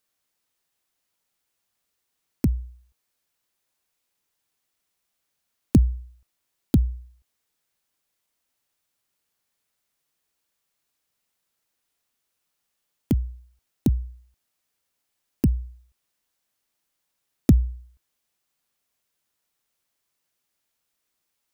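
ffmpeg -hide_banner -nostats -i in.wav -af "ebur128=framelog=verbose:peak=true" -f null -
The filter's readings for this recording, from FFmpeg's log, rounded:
Integrated loudness:
  I:         -25.1 LUFS
  Threshold: -37.2 LUFS
Loudness range:
  LRA:         7.4 LU
  Threshold: -51.4 LUFS
  LRA low:   -35.9 LUFS
  LRA high:  -28.5 LUFS
True peak:
  Peak:       -4.1 dBFS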